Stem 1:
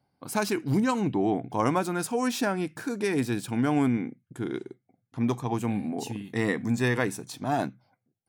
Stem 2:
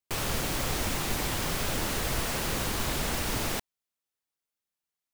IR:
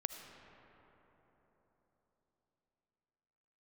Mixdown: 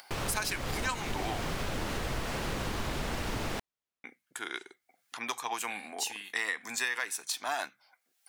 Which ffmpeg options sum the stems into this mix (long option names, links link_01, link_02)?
-filter_complex "[0:a]acompressor=mode=upward:threshold=-39dB:ratio=2.5,highpass=1400,acontrast=83,volume=2.5dB,asplit=3[link_01][link_02][link_03];[link_01]atrim=end=1.45,asetpts=PTS-STARTPTS,afade=type=out:start_time=1.446:duration=0.004:curve=hsin[link_04];[link_02]atrim=start=1.45:end=4.04,asetpts=PTS-STARTPTS,volume=0[link_05];[link_03]atrim=start=4.04,asetpts=PTS-STARTPTS,afade=type=in:duration=0.004:curve=hsin[link_06];[link_04][link_05][link_06]concat=n=3:v=0:a=1[link_07];[1:a]aemphasis=mode=reproduction:type=50kf,volume=-0.5dB[link_08];[link_07][link_08]amix=inputs=2:normalize=0,asoftclip=type=hard:threshold=-11.5dB,acompressor=threshold=-29dB:ratio=6"